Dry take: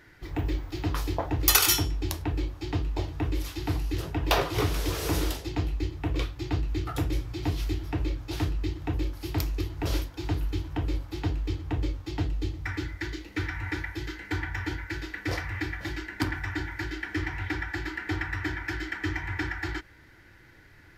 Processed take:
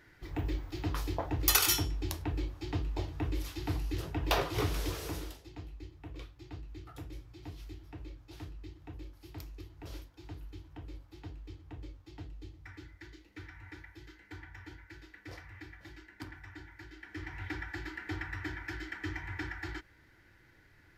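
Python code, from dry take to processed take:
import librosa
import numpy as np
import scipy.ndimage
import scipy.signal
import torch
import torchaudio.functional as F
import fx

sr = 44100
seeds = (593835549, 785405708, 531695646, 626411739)

y = fx.gain(x, sr, db=fx.line((4.84, -5.5), (5.37, -17.0), (16.92, -17.0), (17.45, -8.0)))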